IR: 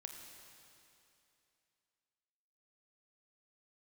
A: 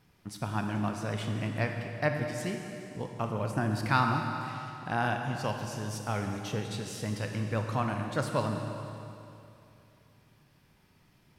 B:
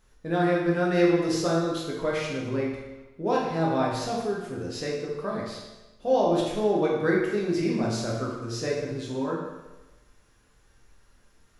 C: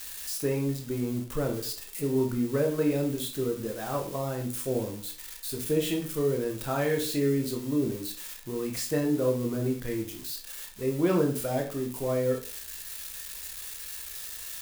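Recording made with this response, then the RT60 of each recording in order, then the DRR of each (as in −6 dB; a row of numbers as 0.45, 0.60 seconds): A; 2.8, 1.1, 0.40 seconds; 3.0, −4.0, 1.0 decibels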